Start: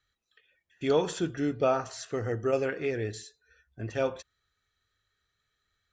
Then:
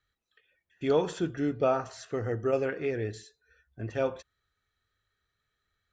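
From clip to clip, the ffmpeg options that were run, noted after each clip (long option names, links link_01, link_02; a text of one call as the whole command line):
ffmpeg -i in.wav -af "highshelf=frequency=3400:gain=-7.5" out.wav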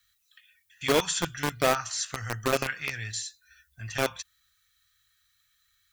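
ffmpeg -i in.wav -filter_complex "[0:a]acrossover=split=170|920[link_01][link_02][link_03];[link_02]acrusher=bits=3:mix=0:aa=0.000001[link_04];[link_03]crystalizer=i=8:c=0[link_05];[link_01][link_04][link_05]amix=inputs=3:normalize=0" out.wav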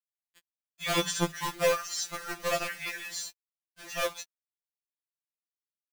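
ffmpeg -i in.wav -af "acrusher=bits=6:mix=0:aa=0.000001,afftfilt=real='re*2.83*eq(mod(b,8),0)':imag='im*2.83*eq(mod(b,8),0)':win_size=2048:overlap=0.75" out.wav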